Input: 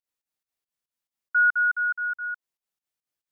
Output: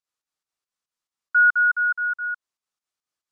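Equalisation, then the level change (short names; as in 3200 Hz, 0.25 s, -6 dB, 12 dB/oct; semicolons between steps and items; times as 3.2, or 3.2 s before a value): air absorption 65 m; tone controls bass -2 dB, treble +8 dB; bell 1200 Hz +7 dB 0.62 oct; 0.0 dB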